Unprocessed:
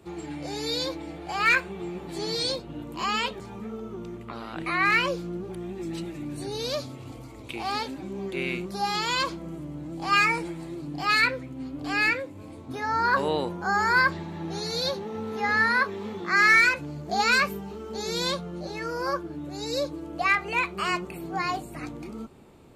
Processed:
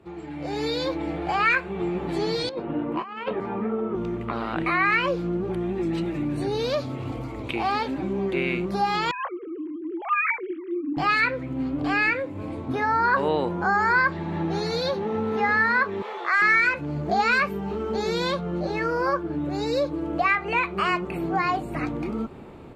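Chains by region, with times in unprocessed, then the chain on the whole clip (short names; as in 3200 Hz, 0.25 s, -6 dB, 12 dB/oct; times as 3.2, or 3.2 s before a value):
2.49–3.95 three-band isolator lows -16 dB, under 170 Hz, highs -18 dB, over 2600 Hz + negative-ratio compressor -35 dBFS, ratio -0.5
9.11–10.97 sine-wave speech + bell 1200 Hz -7.5 dB 2.8 oct
16.02–16.42 HPF 540 Hz 24 dB/oct + hard clip -14.5 dBFS
whole clip: compressor 2:1, threshold -35 dBFS; tone controls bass -1 dB, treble -15 dB; AGC gain up to 10.5 dB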